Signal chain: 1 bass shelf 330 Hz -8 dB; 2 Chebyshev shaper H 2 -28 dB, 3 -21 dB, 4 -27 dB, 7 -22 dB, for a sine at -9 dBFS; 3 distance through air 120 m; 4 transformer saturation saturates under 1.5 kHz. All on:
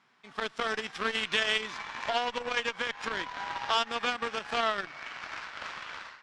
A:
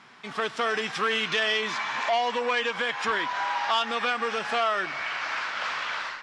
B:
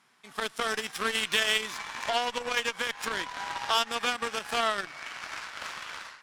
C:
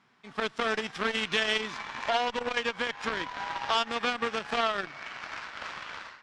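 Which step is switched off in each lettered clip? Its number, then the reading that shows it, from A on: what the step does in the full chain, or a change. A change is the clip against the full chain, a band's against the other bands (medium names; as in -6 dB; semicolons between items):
2, loudness change +5.0 LU; 3, 8 kHz band +8.0 dB; 1, 250 Hz band +3.5 dB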